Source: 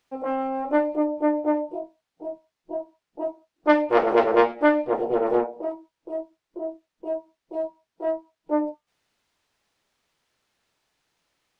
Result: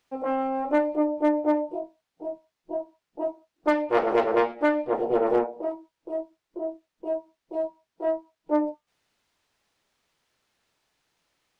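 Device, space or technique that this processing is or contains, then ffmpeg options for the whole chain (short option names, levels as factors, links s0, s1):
limiter into clipper: -af "alimiter=limit=0.299:level=0:latency=1:release=462,asoftclip=type=hard:threshold=0.237"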